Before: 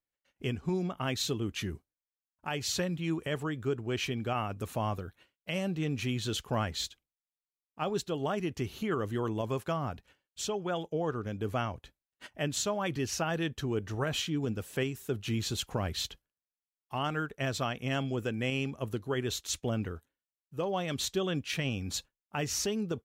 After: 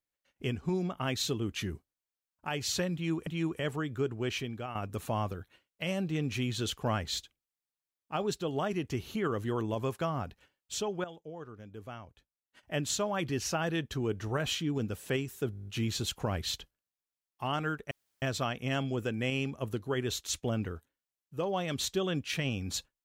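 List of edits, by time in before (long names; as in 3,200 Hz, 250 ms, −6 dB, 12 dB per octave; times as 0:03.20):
0:02.94–0:03.27: repeat, 2 plays
0:03.89–0:04.42: fade out, to −10 dB
0:10.71–0:12.30: clip gain −12 dB
0:15.18: stutter 0.02 s, 9 plays
0:17.42: splice in room tone 0.31 s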